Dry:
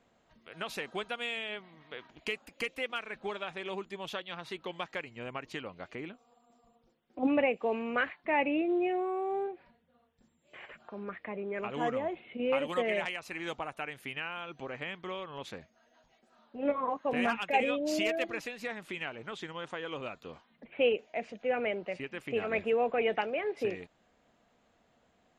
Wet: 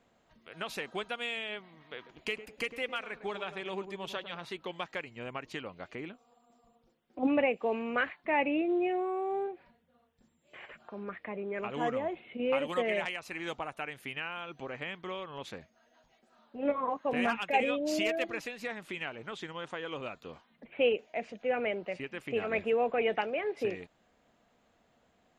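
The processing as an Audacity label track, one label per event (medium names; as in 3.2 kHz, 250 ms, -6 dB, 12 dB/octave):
1.960000	4.450000	filtered feedback delay 104 ms, feedback 46%, low-pass 810 Hz, level -9 dB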